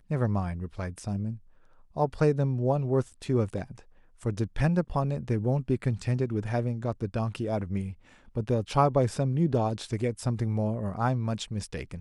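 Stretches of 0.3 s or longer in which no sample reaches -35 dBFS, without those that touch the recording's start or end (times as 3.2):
1.35–1.97
3.79–4.23
7.92–8.36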